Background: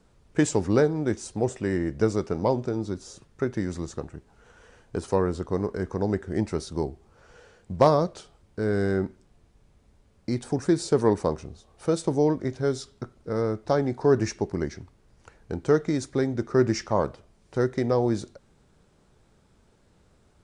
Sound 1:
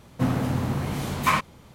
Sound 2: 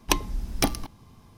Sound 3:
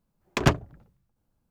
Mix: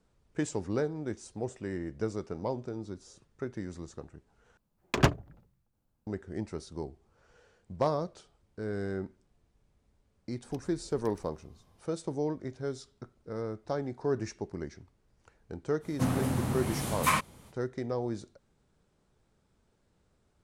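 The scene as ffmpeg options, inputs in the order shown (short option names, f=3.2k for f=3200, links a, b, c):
-filter_complex "[0:a]volume=-10dB[a];[2:a]acompressor=threshold=-39dB:ratio=6:attack=3.2:release=140:knee=1:detection=peak[b];[1:a]equalizer=f=9.8k:t=o:w=0.85:g=10.5[c];[a]asplit=2[d][e];[d]atrim=end=4.574[f];[3:a]atrim=end=1.5,asetpts=PTS-STARTPTS,volume=-3dB[g];[e]atrim=start=6.066[h];[b]atrim=end=1.37,asetpts=PTS-STARTPTS,volume=-12dB,afade=t=in:d=0.004:c=hsin,afade=t=out:st=1.366:d=0.004:c=hsin,adelay=10430[i];[c]atrim=end=1.74,asetpts=PTS-STARTPTS,volume=-5dB,afade=t=in:d=0.05,afade=t=out:st=1.69:d=0.05,adelay=15800[j];[f][g]acrossfade=d=0.004:c1=hsin:c2=hsin[k];[k][h]acrossfade=d=0.004:c1=hsin:c2=hsin[l];[l][i][j]amix=inputs=3:normalize=0"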